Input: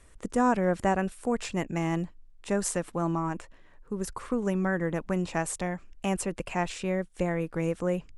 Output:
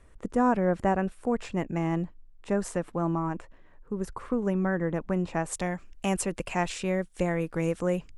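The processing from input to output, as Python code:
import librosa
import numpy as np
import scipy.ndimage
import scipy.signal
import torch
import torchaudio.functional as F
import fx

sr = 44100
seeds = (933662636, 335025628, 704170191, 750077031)

y = fx.high_shelf(x, sr, hz=2800.0, db=fx.steps((0.0, -11.5), (5.51, 2.0)))
y = y * librosa.db_to_amplitude(1.0)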